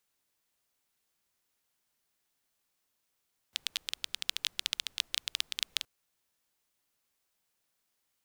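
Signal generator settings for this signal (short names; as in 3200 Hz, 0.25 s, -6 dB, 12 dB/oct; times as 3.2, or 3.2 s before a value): rain from filtered ticks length 2.32 s, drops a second 13, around 3400 Hz, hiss -29.5 dB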